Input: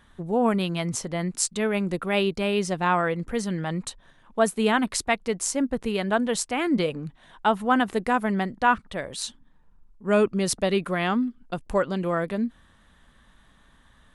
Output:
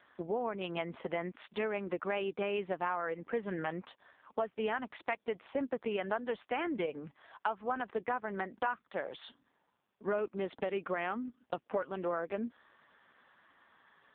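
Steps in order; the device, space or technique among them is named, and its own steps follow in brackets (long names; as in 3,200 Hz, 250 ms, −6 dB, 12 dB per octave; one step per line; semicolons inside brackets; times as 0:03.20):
voicemail (band-pass filter 380–2,800 Hz; downward compressor 6 to 1, threshold −33 dBFS, peak gain reduction 17.5 dB; level +2.5 dB; AMR narrowband 5.15 kbit/s 8,000 Hz)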